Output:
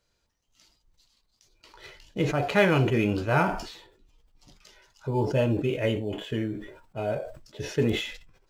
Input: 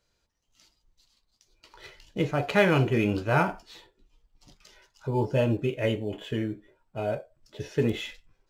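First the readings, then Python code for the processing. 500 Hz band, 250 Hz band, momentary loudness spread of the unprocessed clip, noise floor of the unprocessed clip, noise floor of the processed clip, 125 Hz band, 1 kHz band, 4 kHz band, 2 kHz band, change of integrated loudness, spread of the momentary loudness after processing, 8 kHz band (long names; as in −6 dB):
+0.5 dB, +0.5 dB, 17 LU, −74 dBFS, −73 dBFS, +0.5 dB, +0.5 dB, +2.0 dB, +0.5 dB, +1.0 dB, 17 LU, +3.5 dB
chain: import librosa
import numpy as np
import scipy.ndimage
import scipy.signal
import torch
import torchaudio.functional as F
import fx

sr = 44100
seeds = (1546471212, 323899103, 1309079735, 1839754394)

y = fx.sustainer(x, sr, db_per_s=76.0)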